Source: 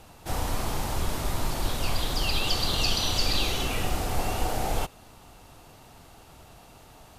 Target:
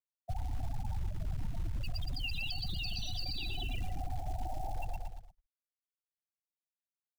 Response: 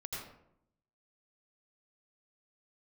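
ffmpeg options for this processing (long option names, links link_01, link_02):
-filter_complex "[0:a]lowshelf=frequency=240:gain=-4,bandreject=frequency=450:width=12,asplit=2[link_01][link_02];[1:a]atrim=start_sample=2205,asetrate=48510,aresample=44100,adelay=140[link_03];[link_02][link_03]afir=irnorm=-1:irlink=0,volume=-19.5dB[link_04];[link_01][link_04]amix=inputs=2:normalize=0,afftfilt=real='re*gte(hypot(re,im),0.1)':imag='im*gte(hypot(re,im),0.1)':win_size=1024:overlap=0.75,equalizer=frequency=1000:width_type=o:width=0.63:gain=-12,aecho=1:1:1.1:0.7,asplit=2[link_05][link_06];[link_06]adelay=115,lowpass=frequency=1900:poles=1,volume=-5.5dB,asplit=2[link_07][link_08];[link_08]adelay=115,lowpass=frequency=1900:poles=1,volume=0.35,asplit=2[link_09][link_10];[link_10]adelay=115,lowpass=frequency=1900:poles=1,volume=0.35,asplit=2[link_11][link_12];[link_12]adelay=115,lowpass=frequency=1900:poles=1,volume=0.35[link_13];[link_05][link_07][link_09][link_11][link_13]amix=inputs=5:normalize=0,acrossover=split=100|2400[link_14][link_15][link_16];[link_14]acompressor=threshold=-37dB:ratio=4[link_17];[link_15]acompressor=threshold=-47dB:ratio=4[link_18];[link_16]acompressor=threshold=-41dB:ratio=4[link_19];[link_17][link_18][link_19]amix=inputs=3:normalize=0,acrusher=bits=6:mode=log:mix=0:aa=0.000001,alimiter=level_in=11dB:limit=-24dB:level=0:latency=1:release=21,volume=-11dB,volume=6dB"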